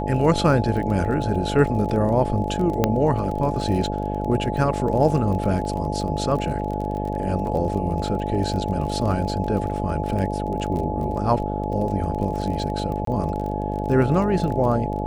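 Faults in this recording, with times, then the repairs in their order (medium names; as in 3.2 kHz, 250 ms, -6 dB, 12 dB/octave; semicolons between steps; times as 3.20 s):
buzz 50 Hz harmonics 14 -27 dBFS
crackle 28 per s -29 dBFS
whine 850 Hz -29 dBFS
2.84 s: pop -5 dBFS
13.05–13.07 s: dropout 23 ms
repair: de-click; band-stop 850 Hz, Q 30; de-hum 50 Hz, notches 14; interpolate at 13.05 s, 23 ms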